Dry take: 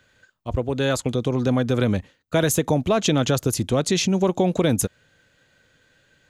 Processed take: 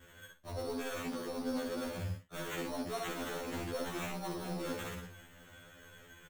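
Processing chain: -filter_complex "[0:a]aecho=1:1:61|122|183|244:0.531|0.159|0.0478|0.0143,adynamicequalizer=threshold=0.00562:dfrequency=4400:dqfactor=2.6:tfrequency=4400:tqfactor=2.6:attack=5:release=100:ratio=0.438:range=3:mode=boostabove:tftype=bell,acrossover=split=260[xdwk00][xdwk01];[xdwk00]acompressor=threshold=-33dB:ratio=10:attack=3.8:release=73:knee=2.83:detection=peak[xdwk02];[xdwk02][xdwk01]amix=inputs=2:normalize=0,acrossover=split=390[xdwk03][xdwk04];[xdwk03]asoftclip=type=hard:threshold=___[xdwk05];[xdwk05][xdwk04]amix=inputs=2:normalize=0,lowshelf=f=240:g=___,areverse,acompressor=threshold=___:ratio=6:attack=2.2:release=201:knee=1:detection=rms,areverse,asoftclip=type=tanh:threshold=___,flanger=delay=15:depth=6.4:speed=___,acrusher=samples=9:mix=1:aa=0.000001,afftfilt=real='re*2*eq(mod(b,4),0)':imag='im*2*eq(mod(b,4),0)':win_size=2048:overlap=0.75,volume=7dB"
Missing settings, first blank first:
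-26.5dB, 5, -32dB, -37dB, 2.6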